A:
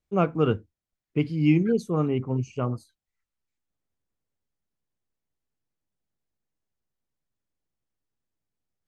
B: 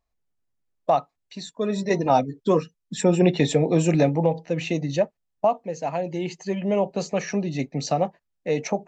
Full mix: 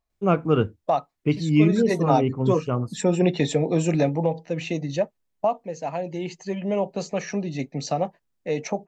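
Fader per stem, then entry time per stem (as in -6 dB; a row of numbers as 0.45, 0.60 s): +2.5, -2.0 dB; 0.10, 0.00 s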